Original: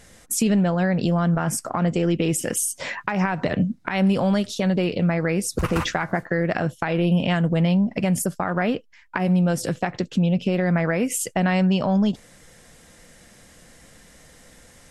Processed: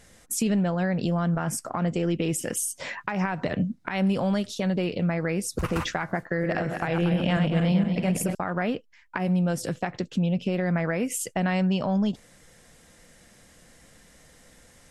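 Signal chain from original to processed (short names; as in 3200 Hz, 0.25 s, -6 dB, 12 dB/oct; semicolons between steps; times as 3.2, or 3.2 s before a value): 6.2–8.35 regenerating reverse delay 0.117 s, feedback 63%, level -5 dB; gain -4.5 dB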